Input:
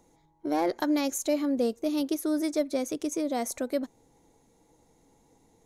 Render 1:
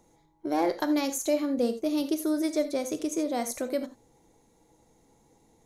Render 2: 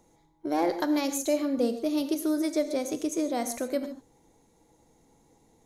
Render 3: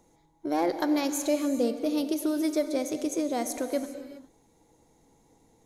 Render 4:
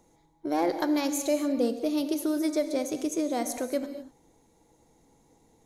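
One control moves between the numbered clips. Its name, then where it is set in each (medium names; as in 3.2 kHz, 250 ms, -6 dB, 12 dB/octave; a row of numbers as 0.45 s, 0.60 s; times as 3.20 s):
gated-style reverb, gate: 110 ms, 170 ms, 440 ms, 270 ms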